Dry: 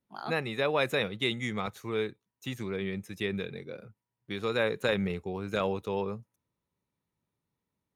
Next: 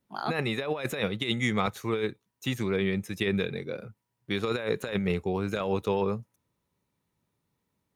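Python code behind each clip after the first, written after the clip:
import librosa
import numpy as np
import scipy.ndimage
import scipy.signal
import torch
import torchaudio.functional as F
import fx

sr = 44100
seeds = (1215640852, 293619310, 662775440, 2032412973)

y = fx.over_compress(x, sr, threshold_db=-31.0, ratio=-0.5)
y = y * 10.0 ** (4.5 / 20.0)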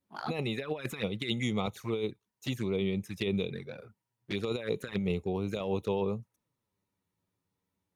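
y = fx.env_flanger(x, sr, rest_ms=10.8, full_db=-25.5)
y = y * 10.0 ** (-2.5 / 20.0)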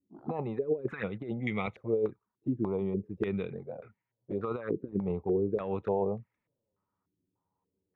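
y = fx.filter_held_lowpass(x, sr, hz=3.4, low_hz=320.0, high_hz=2100.0)
y = y * 10.0 ** (-2.5 / 20.0)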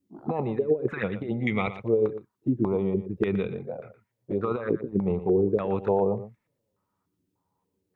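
y = x + 10.0 ** (-13.0 / 20.0) * np.pad(x, (int(118 * sr / 1000.0), 0))[:len(x)]
y = y * 10.0 ** (6.0 / 20.0)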